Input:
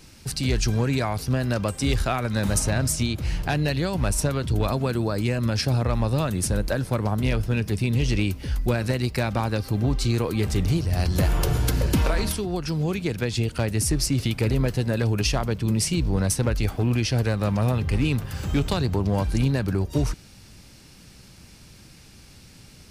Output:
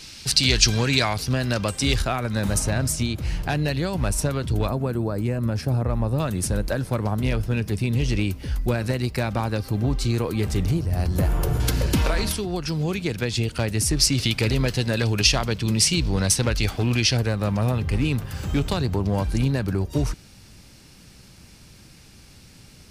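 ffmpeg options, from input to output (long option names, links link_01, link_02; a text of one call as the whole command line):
ffmpeg -i in.wav -af "asetnsamples=nb_out_samples=441:pad=0,asendcmd='1.14 equalizer g 7;2.02 equalizer g -0.5;4.68 equalizer g -11.5;6.2 equalizer g -1;10.71 equalizer g -7.5;11.6 equalizer g 3.5;13.97 equalizer g 9.5;17.17 equalizer g 0',equalizer=frequency=4100:width_type=o:width=2.4:gain=14" out.wav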